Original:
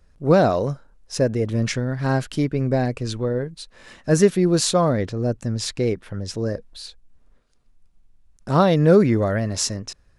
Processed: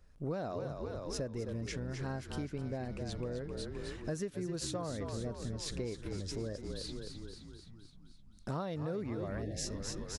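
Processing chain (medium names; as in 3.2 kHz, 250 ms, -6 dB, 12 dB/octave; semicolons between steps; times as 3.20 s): frequency-shifting echo 260 ms, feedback 60%, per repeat -45 Hz, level -9 dB; compression 6:1, threshold -30 dBFS, peak gain reduction 19 dB; spectral selection erased 9.42–9.67 s, 800–1600 Hz; trim -6 dB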